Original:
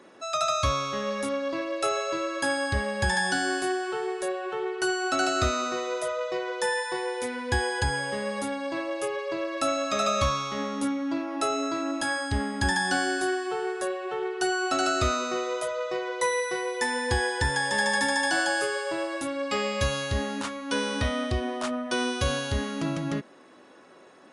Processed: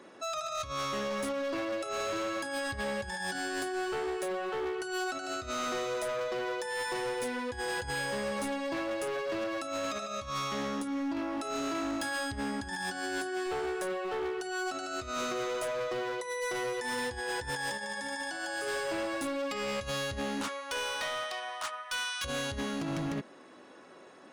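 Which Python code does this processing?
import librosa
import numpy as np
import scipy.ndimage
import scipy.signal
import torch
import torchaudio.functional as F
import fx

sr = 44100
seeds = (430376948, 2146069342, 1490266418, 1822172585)

y = fx.highpass(x, sr, hz=fx.line((20.47, 430.0), (22.24, 1200.0)), slope=24, at=(20.47, 22.24), fade=0.02)
y = fx.over_compress(y, sr, threshold_db=-29.0, ratio=-0.5)
y = np.clip(y, -10.0 ** (-28.0 / 20.0), 10.0 ** (-28.0 / 20.0))
y = y * librosa.db_to_amplitude(-2.5)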